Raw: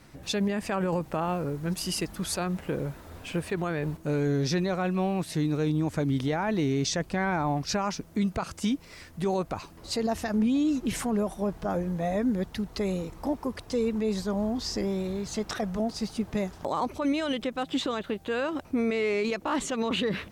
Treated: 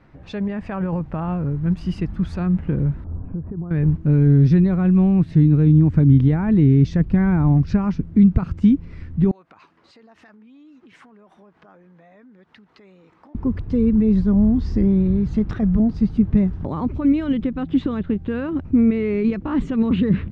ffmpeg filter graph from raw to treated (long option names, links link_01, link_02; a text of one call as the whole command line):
ffmpeg -i in.wav -filter_complex "[0:a]asettb=1/sr,asplit=3[link_01][link_02][link_03];[link_01]atrim=end=3.044[link_04];[link_02]atrim=start=3.04:end=3.71,asetpts=PTS-STARTPTS,afade=type=in:duration=0.004:curve=qsin,afade=type=out:start_time=0.666:duration=0.004:curve=qsin,lowpass=frequency=1100:width=0.5412,lowpass=frequency=1100:width=1.3066,acompressor=threshold=-37dB:ratio=4:attack=3.2:release=140:knee=1:detection=peak[link_05];[link_03]atrim=start=3.706[link_06];[link_04][link_05]acrossfade=duration=0.004:curve1=hsin:curve2=qsin[link_07];[link_07][link_06]acrossfade=duration=0.004:curve1=qsin:curve2=hsin,asettb=1/sr,asplit=3[link_08][link_09][link_10];[link_08]atrim=end=9.314[link_11];[link_09]atrim=start=9.31:end=13.35,asetpts=PTS-STARTPTS,afade=type=in:duration=0.004:curve=qsin,afade=type=out:start_time=4.036:duration=0.004:curve=qsin,acompressor=threshold=-36dB:ratio=12:attack=3.2:release=140:knee=1:detection=peak,highpass=860[link_12];[link_10]atrim=start=13.346[link_13];[link_11][link_12]acrossfade=duration=0.004:curve1=hsin:curve2=qsin[link_14];[link_14][link_13]acrossfade=duration=0.004:curve1=qsin:curve2=hsin,asubboost=boost=10.5:cutoff=200,lowpass=2000,volume=1dB" out.wav